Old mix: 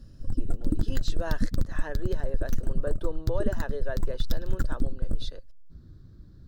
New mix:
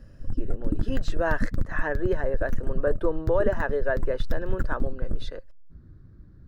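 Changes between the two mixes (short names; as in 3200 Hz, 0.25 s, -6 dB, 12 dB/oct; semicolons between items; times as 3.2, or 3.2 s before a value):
speech +8.0 dB; master: add resonant high shelf 2800 Hz -9.5 dB, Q 1.5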